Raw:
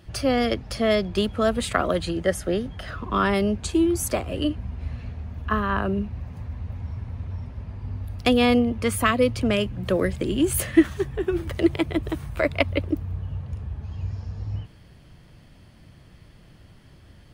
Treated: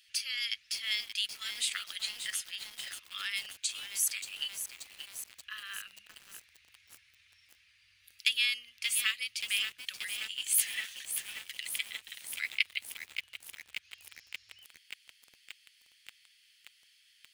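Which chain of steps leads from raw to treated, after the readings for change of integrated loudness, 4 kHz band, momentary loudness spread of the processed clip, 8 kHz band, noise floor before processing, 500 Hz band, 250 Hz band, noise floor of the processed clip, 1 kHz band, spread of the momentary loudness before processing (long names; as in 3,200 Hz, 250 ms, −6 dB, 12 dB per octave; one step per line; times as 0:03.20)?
−8.5 dB, +0.5 dB, 20 LU, +1.0 dB, −51 dBFS, below −40 dB, below −40 dB, −66 dBFS, −26.0 dB, 14 LU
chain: inverse Chebyshev high-pass filter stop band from 880 Hz, stop band 50 dB
feedback echo at a low word length 580 ms, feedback 80%, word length 7 bits, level −8 dB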